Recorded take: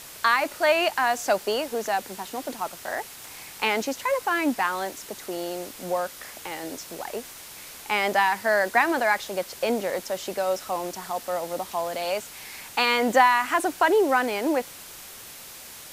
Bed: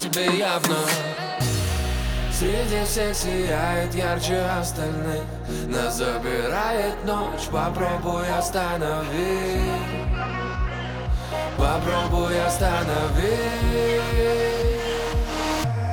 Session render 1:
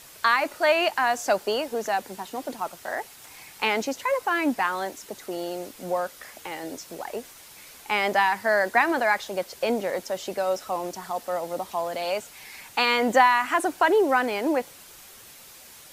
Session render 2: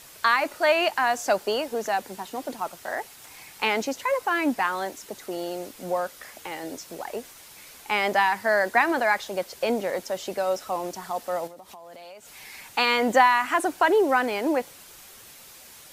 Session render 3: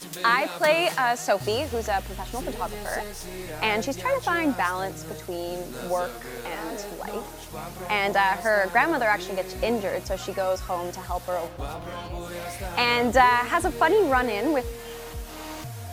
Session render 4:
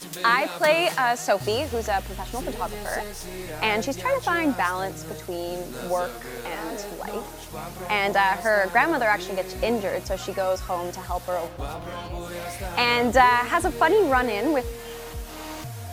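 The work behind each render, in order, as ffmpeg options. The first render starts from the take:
-af "afftdn=nr=6:nf=-43"
-filter_complex "[0:a]asettb=1/sr,asplit=3[a][b][c];[a]atrim=end=11.474[d];[b]atrim=start=11.47:end=12.33,asetpts=PTS-STARTPTS,afade=t=in:d=0.004:c=qsin,afade=t=out:st=0.856:d=0.004:c=qsin,acompressor=threshold=-41dB:ratio=10:attack=3.2:release=140:knee=1:detection=peak[e];[c]atrim=start=12.326[f];[d][e]acrossfade=d=0.004:c1=hsin:c2=qsin[g];[g][f]acrossfade=d=0.004:c1=qsin:c2=hsin"
-filter_complex "[1:a]volume=-13dB[a];[0:a][a]amix=inputs=2:normalize=0"
-af "volume=1dB"

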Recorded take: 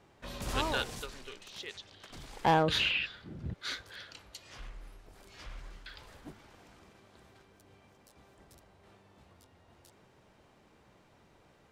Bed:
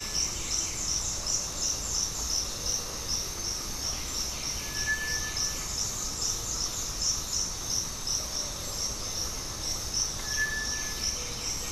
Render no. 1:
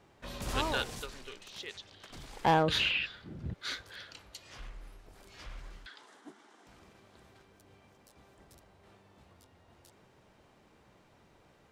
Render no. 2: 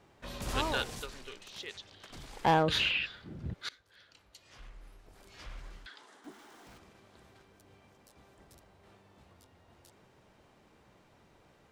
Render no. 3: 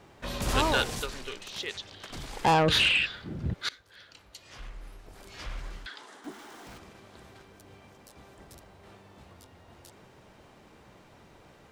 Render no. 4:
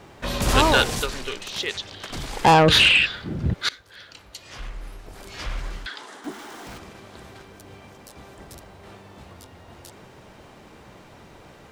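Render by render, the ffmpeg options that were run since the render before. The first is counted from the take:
-filter_complex "[0:a]asettb=1/sr,asplit=3[a][b][c];[a]atrim=end=5.864[d];[b]atrim=start=5.86:end=6.67,asetpts=PTS-STARTPTS,afade=t=in:d=0.004:c=qsin,afade=t=out:st=0.806:d=0.004:c=qsin,highpass=f=250:w=0.5412,highpass=f=250:w=1.3066,equalizer=f=540:t=q:w=4:g=-9,equalizer=f=2.5k:t=q:w=4:g=-8,equalizer=f=4.6k:t=q:w=4:g=-5,lowpass=f=9.9k:w=0.5412,lowpass=f=9.9k:w=1.3066[e];[c]atrim=start=6.666[f];[d][e]acrossfade=d=0.004:c1=hsin:c2=qsin[g];[g][f]acrossfade=d=0.004:c1=qsin:c2=hsin"
-filter_complex "[0:a]asettb=1/sr,asplit=3[a][b][c];[a]atrim=end=6.244[d];[b]atrim=start=6.24:end=6.78,asetpts=PTS-STARTPTS,afade=t=in:d=0.004:c=qsin,afade=t=out:st=0.536:d=0.004:c=qsin,aeval=exprs='val(0)+0.5*0.00158*sgn(val(0))':c=same[e];[c]atrim=start=6.776[f];[d][e]acrossfade=d=0.004:c1=hsin:c2=qsin[g];[g][f]acrossfade=d=0.004:c1=qsin:c2=hsin,asplit=2[h][i];[h]atrim=end=3.69,asetpts=PTS-STARTPTS,afade=t=out:st=3.686:d=0.004:c=hsin:silence=0.0668344[j];[i]atrim=start=3.69,asetpts=PTS-STARTPTS,afade=t=in:d=1.8:silence=0.0668344[k];[j][k]concat=n=2:v=0:a=1"
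-af "aeval=exprs='0.141*sin(PI/2*1.58*val(0)/0.141)':c=same"
-af "volume=8dB"

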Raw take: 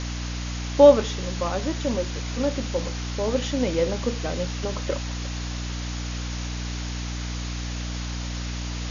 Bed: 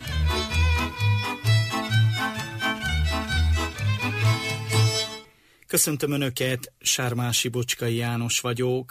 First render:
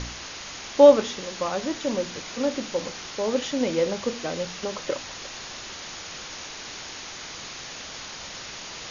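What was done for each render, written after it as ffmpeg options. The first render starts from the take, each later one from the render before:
-af "bandreject=f=60:t=h:w=4,bandreject=f=120:t=h:w=4,bandreject=f=180:t=h:w=4,bandreject=f=240:t=h:w=4,bandreject=f=300:t=h:w=4"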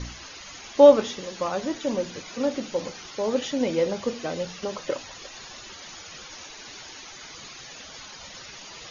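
-af "afftdn=nr=12:nf=-39"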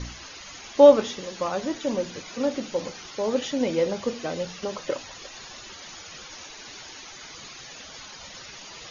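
-af anull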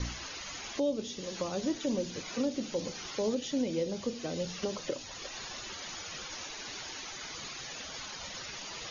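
-filter_complex "[0:a]acrossover=split=460|3000[a][b][c];[b]acompressor=threshold=-40dB:ratio=6[d];[a][d][c]amix=inputs=3:normalize=0,alimiter=limit=-22dB:level=0:latency=1:release=495"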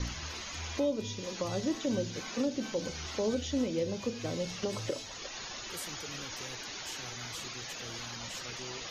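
-filter_complex "[1:a]volume=-22.5dB[a];[0:a][a]amix=inputs=2:normalize=0"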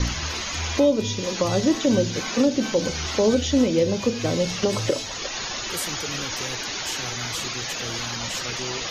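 -af "volume=12dB"

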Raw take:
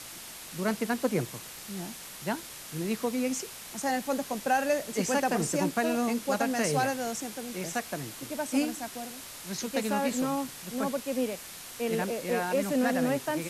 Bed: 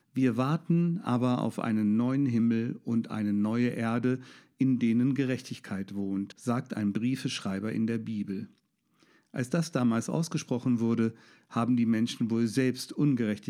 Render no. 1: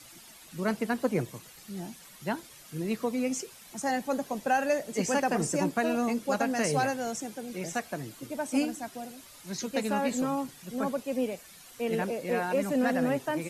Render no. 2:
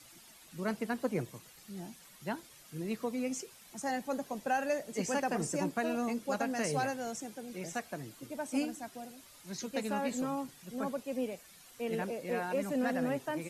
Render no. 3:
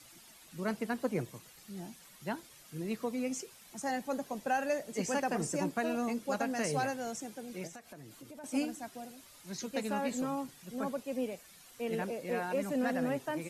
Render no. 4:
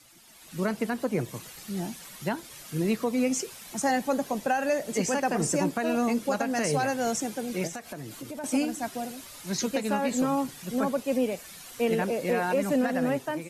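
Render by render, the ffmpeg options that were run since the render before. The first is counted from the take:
-af "afftdn=nr=11:nf=-44"
-af "volume=-5.5dB"
-filter_complex "[0:a]asettb=1/sr,asplit=3[a][b][c];[a]atrim=end=7.674[d];[b]atrim=start=7.67:end=8.44,asetpts=PTS-STARTPTS,afade=t=in:d=0.004:c=qsin,afade=t=out:st=0.766:d=0.004:c=qsin,acompressor=threshold=-47dB:ratio=4:attack=3.2:release=140:knee=1:detection=peak[e];[c]atrim=start=8.436[f];[d][e]acrossfade=d=0.004:c1=hsin:c2=qsin[g];[g][f]acrossfade=d=0.004:c1=qsin:c2=hsin"
-af "dynaudnorm=f=140:g=7:m=11.5dB,alimiter=limit=-16.5dB:level=0:latency=1:release=244"

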